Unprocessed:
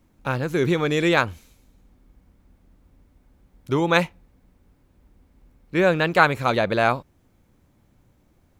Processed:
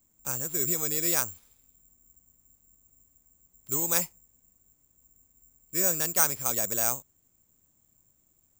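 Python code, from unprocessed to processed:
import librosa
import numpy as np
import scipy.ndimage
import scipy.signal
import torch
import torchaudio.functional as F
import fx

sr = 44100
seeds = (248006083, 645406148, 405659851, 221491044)

y = (np.kron(x[::6], np.eye(6)[0]) * 6)[:len(x)]
y = y * 10.0 ** (-15.0 / 20.0)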